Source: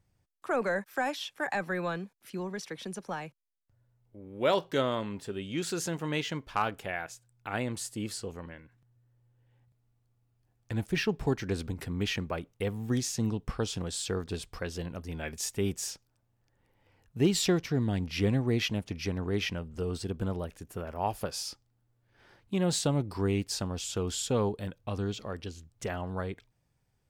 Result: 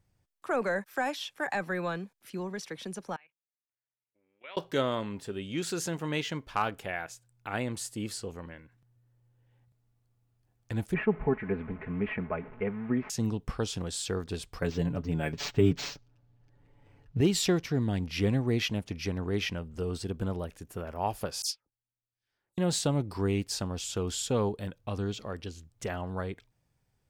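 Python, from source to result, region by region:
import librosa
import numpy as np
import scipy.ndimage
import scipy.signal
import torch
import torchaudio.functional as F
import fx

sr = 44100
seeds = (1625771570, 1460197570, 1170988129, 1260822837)

y = fx.chain(x, sr, fx.bandpass_q(hz=2400.0, q=2.5),
    fx.air_absorb(metres=230.0),
    fx.level_steps(step_db=15), at=(3.16, 4.57))
y = fx.chain(y, sr, fx.delta_mod(bps=64000, step_db=-41.0),
    fx.ellip_lowpass(hz=2300.0, order=4, stop_db=80),
    fx.comb(ms=4.7, depth=0.59), at=(10.94, 13.1))
y = fx.chain(y, sr, fx.low_shelf(hz=420.0, db=8.5),
    fx.comb(ms=7.0, depth=0.66),
    fx.resample_linear(factor=4), at=(14.62, 17.21))
y = fx.chain(y, sr, fx.high_shelf(hz=3000.0, db=10.0),
    fx.dispersion(late='lows', ms=138.0, hz=2200.0),
    fx.upward_expand(threshold_db=-47.0, expansion=2.5), at=(21.42, 22.58))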